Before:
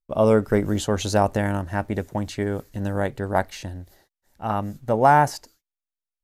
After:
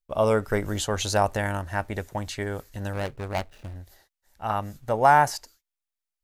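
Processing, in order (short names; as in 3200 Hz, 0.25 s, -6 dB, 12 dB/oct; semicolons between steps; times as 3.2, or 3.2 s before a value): 2.93–3.76 median filter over 41 samples; bell 230 Hz -10 dB 2.5 oct; gain +1.5 dB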